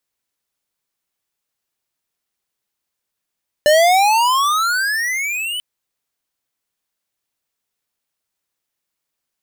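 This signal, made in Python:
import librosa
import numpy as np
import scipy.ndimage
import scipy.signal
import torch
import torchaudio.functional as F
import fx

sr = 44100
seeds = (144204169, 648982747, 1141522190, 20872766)

y = fx.riser_tone(sr, length_s=1.94, level_db=-10.5, wave='square', hz=587.0, rise_st=28.5, swell_db=-13)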